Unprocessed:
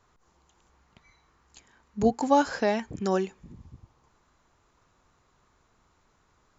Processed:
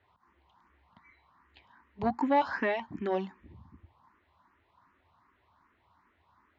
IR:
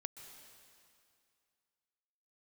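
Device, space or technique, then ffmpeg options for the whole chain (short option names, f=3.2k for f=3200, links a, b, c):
barber-pole phaser into a guitar amplifier: -filter_complex "[0:a]asplit=2[a][b];[b]afreqshift=2.6[c];[a][c]amix=inputs=2:normalize=1,asoftclip=type=tanh:threshold=-19dB,highpass=79,equalizer=f=79:t=q:w=4:g=7,equalizer=f=140:t=q:w=4:g=-8,equalizer=f=290:t=q:w=4:g=3,equalizer=f=470:t=q:w=4:g=-7,equalizer=f=990:t=q:w=4:g=8,equalizer=f=1.9k:t=q:w=4:g=6,lowpass=f=3.7k:w=0.5412,lowpass=f=3.7k:w=1.3066"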